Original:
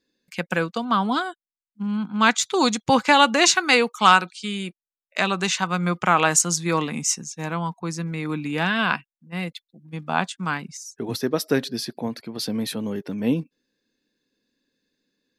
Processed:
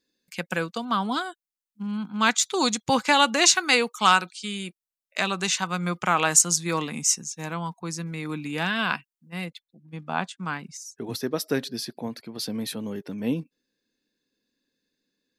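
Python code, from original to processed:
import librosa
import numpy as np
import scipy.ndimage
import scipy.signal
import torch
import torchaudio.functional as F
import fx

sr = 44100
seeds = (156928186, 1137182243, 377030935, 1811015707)

y = fx.high_shelf(x, sr, hz=4400.0, db=fx.steps((0.0, 8.0), (9.45, -3.0), (10.62, 3.5)))
y = y * librosa.db_to_amplitude(-4.5)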